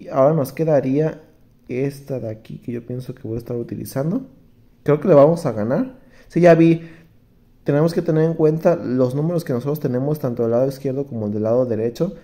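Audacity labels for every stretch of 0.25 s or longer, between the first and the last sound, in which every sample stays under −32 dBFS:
1.170000	1.700000	silence
4.240000	4.860000	silence
5.910000	6.340000	silence
6.910000	7.670000	silence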